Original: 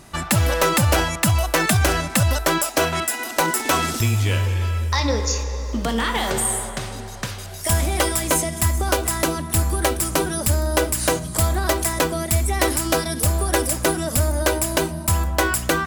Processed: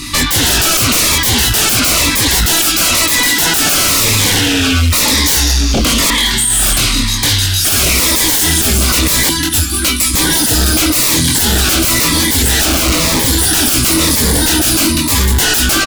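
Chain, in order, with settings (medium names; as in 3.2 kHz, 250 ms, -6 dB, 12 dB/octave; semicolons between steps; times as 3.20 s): chorus 0.39 Hz, delay 19.5 ms, depth 5.8 ms; 9.29–10.14 s: feedback comb 210 Hz, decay 0.15 s, harmonics all, mix 80%; on a send: delay 199 ms -16 dB; on the sum: peak limiter -16 dBFS, peak gain reduction 5.5 dB; 12.65–13.26 s: Schmitt trigger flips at -44.5 dBFS; peaking EQ 440 Hz -3.5 dB 0.72 oct; 6.10–6.73 s: compressor with a negative ratio -31 dBFS, ratio -0.5; FFT filter 100 Hz 0 dB, 190 Hz -7 dB, 290 Hz +10 dB, 520 Hz -27 dB, 990 Hz -2 dB, 3.9 kHz +12 dB, 6.9 kHz +4 dB; sine folder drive 20 dB, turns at -6 dBFS; Shepard-style phaser falling 1 Hz; trim -1.5 dB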